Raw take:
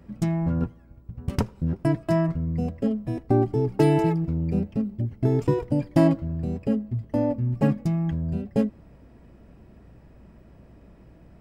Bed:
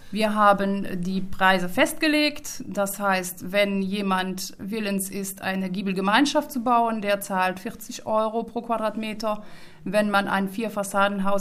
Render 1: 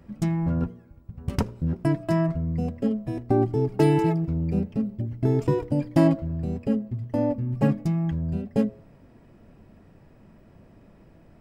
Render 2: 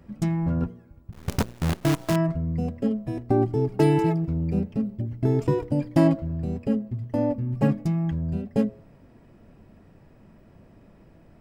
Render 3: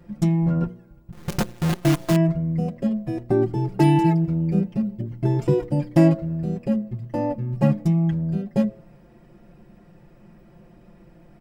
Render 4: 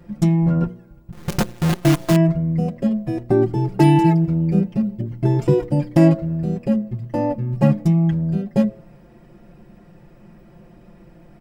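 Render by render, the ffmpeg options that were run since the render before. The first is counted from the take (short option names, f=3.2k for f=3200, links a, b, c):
-af "bandreject=f=60:t=h:w=4,bandreject=f=120:t=h:w=4,bandreject=f=180:t=h:w=4,bandreject=f=240:t=h:w=4,bandreject=f=300:t=h:w=4,bandreject=f=360:t=h:w=4,bandreject=f=420:t=h:w=4,bandreject=f=480:t=h:w=4,bandreject=f=540:t=h:w=4,bandreject=f=600:t=h:w=4,bandreject=f=660:t=h:w=4"
-filter_complex "[0:a]asettb=1/sr,asplit=3[a][b][c];[a]atrim=end=1.124[d];[b]atrim=start=1.12:end=2.16,asetpts=PTS-STARTPTS,afade=t=in:d=0.004:c=qsin,afade=t=out:st=1.036:d=0.004:c=qsin,acrusher=bits=5:dc=4:mix=0:aa=0.000001[e];[c]atrim=start=2.156[f];[d][e]acrossfade=d=0.004:c1=hsin:c2=qsin[g];[g][f]acrossfade=d=0.004:c1=qsin:c2=hsin"
-af "aecho=1:1:5.7:0.88"
-af "volume=3.5dB,alimiter=limit=-3dB:level=0:latency=1"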